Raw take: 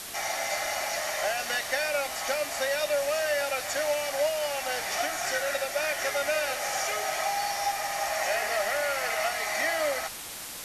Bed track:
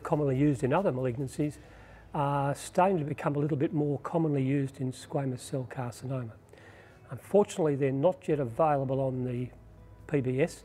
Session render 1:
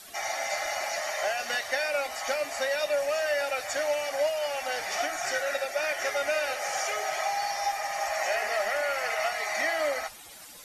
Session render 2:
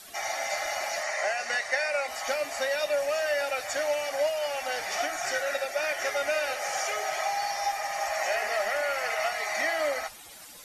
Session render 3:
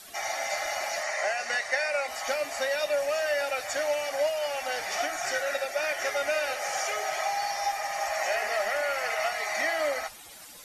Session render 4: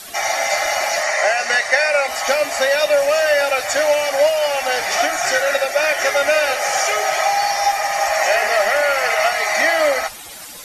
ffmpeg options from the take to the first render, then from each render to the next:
ffmpeg -i in.wav -af "afftdn=noise_reduction=13:noise_floor=-40" out.wav
ffmpeg -i in.wav -filter_complex "[0:a]asettb=1/sr,asplit=3[link_01][link_02][link_03];[link_01]atrim=end=1.034[link_04];[link_02]atrim=start=1.03:end=2.08,asetpts=PTS-STARTPTS,afade=type=in:duration=0.004:curve=qsin,afade=type=out:start_time=1.046:duration=0.004:curve=qsin,highpass=130,equalizer=frequency=280:width_type=q:width=4:gain=-10,equalizer=frequency=2000:width_type=q:width=4:gain=5,equalizer=frequency=3300:width_type=q:width=4:gain=-8,lowpass=frequency=9600:width=0.5412,lowpass=frequency=9600:width=1.3066[link_05];[link_03]atrim=start=2.076[link_06];[link_04][link_05]acrossfade=duration=0.004:curve1=hsin:curve2=qsin[link_07];[link_07][link_06]acrossfade=duration=0.004:curve1=qsin:curve2=hsin" out.wav
ffmpeg -i in.wav -af anull out.wav
ffmpeg -i in.wav -af "volume=12dB" out.wav

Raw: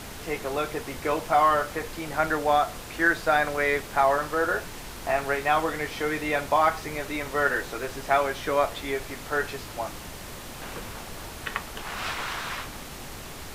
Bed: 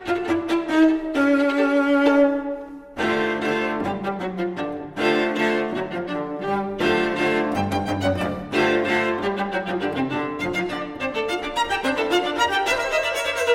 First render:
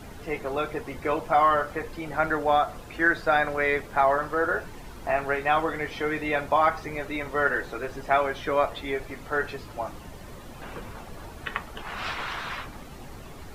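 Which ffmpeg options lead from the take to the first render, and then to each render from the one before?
ffmpeg -i in.wav -af "afftdn=noise_reduction=11:noise_floor=-40" out.wav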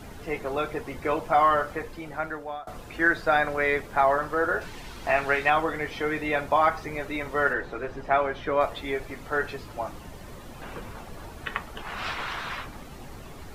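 ffmpeg -i in.wav -filter_complex "[0:a]asettb=1/sr,asplit=3[link_01][link_02][link_03];[link_01]atrim=end=4.614[link_04];[link_02]atrim=start=4.61:end=5.5,asetpts=PTS-STARTPTS,afade=type=in:duration=0.004:curve=qsin,afade=type=out:start_time=0.886:duration=0.004:curve=qsin,equalizer=frequency=3500:width_type=o:width=2.2:gain=8[link_05];[link_03]atrim=start=5.496[link_06];[link_04][link_05]acrossfade=duration=0.004:curve1=hsin:curve2=qsin[link_07];[link_07][link_06]acrossfade=duration=0.004:curve1=qsin:curve2=hsin,asettb=1/sr,asplit=3[link_08][link_09][link_10];[link_08]atrim=end=7.534[link_11];[link_09]atrim=start=7.53:end=8.61,asetpts=PTS-STARTPTS,afade=type=in:duration=0.004:curve=qsin,afade=type=out:start_time=1.076:duration=0.004:curve=qsin,lowpass=frequency=2600:poles=1[link_12];[link_10]atrim=start=8.606[link_13];[link_11][link_12]acrossfade=duration=0.004:curve1=hsin:curve2=qsin[link_14];[link_14][link_13]acrossfade=duration=0.004:curve1=qsin:curve2=hsin,asplit=2[link_15][link_16];[link_15]atrim=end=2.67,asetpts=PTS-STARTPTS,afade=type=out:start_time=1.68:duration=0.99:silence=0.0794328[link_17];[link_16]atrim=start=2.67,asetpts=PTS-STARTPTS,afade=type=in:duration=0.004:curve=hsin:silence=0.0794328[link_18];[link_17][link_18]concat=n=2:v=0:a=1" out.wav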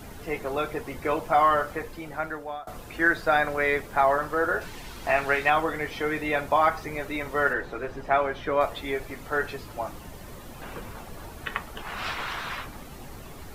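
ffmpeg -i in.wav -af "highshelf=frequency=11000:gain=9" out.wav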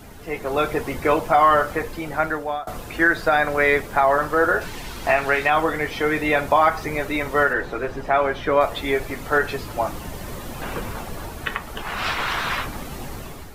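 ffmpeg -i in.wav -af "dynaudnorm=framelen=210:gausssize=5:maxgain=9.5dB,alimiter=limit=-6.5dB:level=0:latency=1:release=149" out.wav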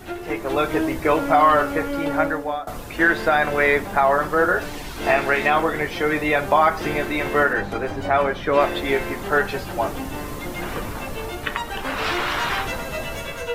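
ffmpeg -i in.wav -i bed.wav -filter_complex "[1:a]volume=-8.5dB[link_01];[0:a][link_01]amix=inputs=2:normalize=0" out.wav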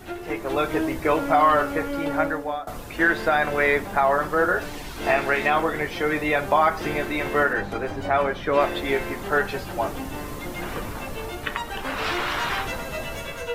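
ffmpeg -i in.wav -af "volume=-2.5dB" out.wav

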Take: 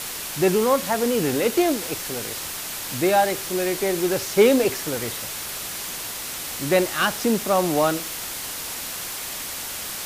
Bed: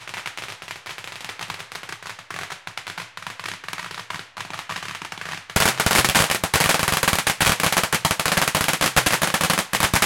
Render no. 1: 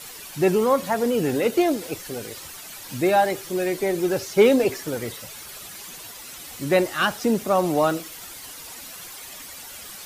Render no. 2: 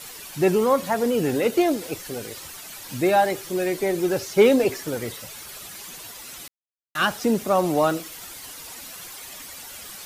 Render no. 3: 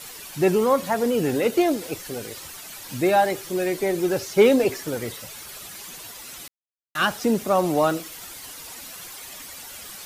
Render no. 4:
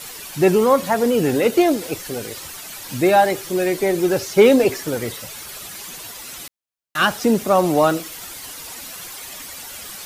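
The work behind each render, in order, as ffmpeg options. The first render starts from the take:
ffmpeg -i in.wav -af "afftdn=noise_reduction=11:noise_floor=-32" out.wav
ffmpeg -i in.wav -filter_complex "[0:a]asplit=3[link_01][link_02][link_03];[link_01]atrim=end=6.48,asetpts=PTS-STARTPTS,afade=type=out:start_time=6.476:duration=0.004:curve=hsin[link_04];[link_02]atrim=start=6.48:end=6.95,asetpts=PTS-STARTPTS,volume=0[link_05];[link_03]atrim=start=6.95,asetpts=PTS-STARTPTS,afade=type=in:duration=0.004:curve=hsin[link_06];[link_04][link_05][link_06]concat=n=3:v=0:a=1" out.wav
ffmpeg -i in.wav -af anull out.wav
ffmpeg -i in.wav -af "volume=4.5dB,alimiter=limit=-3dB:level=0:latency=1" out.wav

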